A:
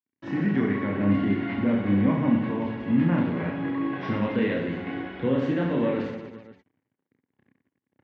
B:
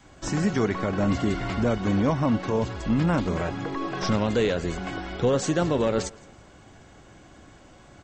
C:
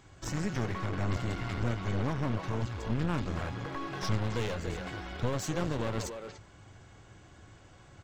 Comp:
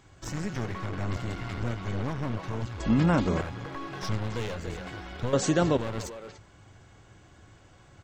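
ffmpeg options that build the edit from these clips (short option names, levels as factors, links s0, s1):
-filter_complex "[1:a]asplit=2[s0][s1];[2:a]asplit=3[s2][s3][s4];[s2]atrim=end=2.802[s5];[s0]atrim=start=2.798:end=3.412[s6];[s3]atrim=start=3.408:end=5.332[s7];[s1]atrim=start=5.328:end=5.772[s8];[s4]atrim=start=5.768[s9];[s5][s6]acrossfade=d=0.004:c1=hsin:c2=hsin[s10];[s10][s7]acrossfade=d=0.004:c1=hsin:c2=hsin[s11];[s11][s8]acrossfade=d=0.004:c1=hsin:c2=hsin[s12];[s12][s9]acrossfade=d=0.004:c1=hsin:c2=hsin"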